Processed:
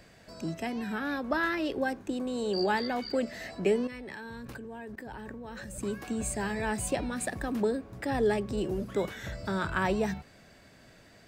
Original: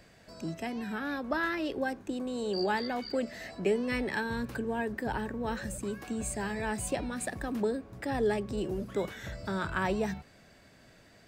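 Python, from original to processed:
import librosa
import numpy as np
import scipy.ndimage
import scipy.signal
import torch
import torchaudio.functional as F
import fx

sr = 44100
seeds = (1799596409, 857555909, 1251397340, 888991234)

y = fx.level_steps(x, sr, step_db=22, at=(3.87, 5.78))
y = y * librosa.db_to_amplitude(2.0)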